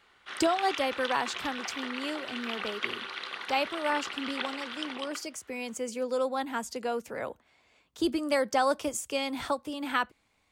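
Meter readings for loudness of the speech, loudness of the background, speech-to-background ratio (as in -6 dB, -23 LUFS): -32.0 LUFS, -36.5 LUFS, 4.5 dB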